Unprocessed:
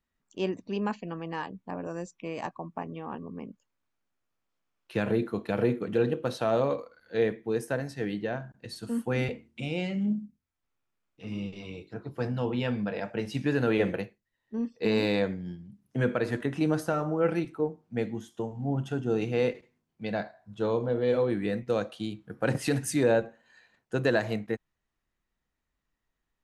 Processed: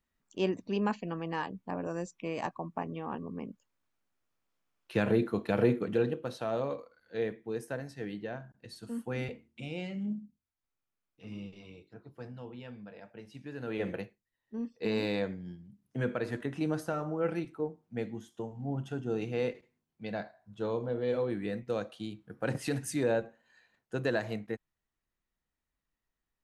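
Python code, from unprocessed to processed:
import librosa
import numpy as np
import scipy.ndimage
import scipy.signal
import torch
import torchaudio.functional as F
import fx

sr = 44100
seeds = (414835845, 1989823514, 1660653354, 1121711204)

y = fx.gain(x, sr, db=fx.line((5.81, 0.0), (6.26, -7.0), (11.29, -7.0), (12.63, -16.5), (13.51, -16.5), (13.92, -5.5)))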